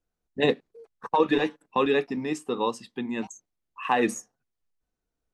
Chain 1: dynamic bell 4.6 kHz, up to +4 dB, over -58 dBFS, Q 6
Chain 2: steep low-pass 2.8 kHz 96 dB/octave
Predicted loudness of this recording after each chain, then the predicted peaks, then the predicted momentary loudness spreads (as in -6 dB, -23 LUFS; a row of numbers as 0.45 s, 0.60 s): -27.0 LUFS, -27.0 LUFS; -9.5 dBFS, -10.0 dBFS; 14 LU, 12 LU